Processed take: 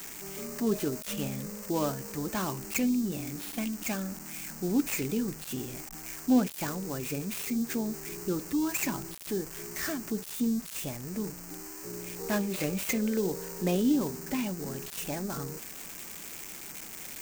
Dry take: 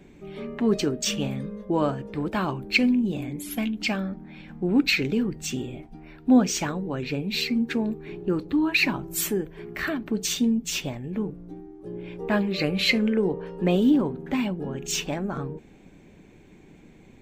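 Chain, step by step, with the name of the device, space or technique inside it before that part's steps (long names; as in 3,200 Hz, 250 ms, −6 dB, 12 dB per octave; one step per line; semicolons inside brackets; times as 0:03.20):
budget class-D amplifier (gap after every zero crossing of 0.14 ms; spike at every zero crossing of −17 dBFS)
level −6 dB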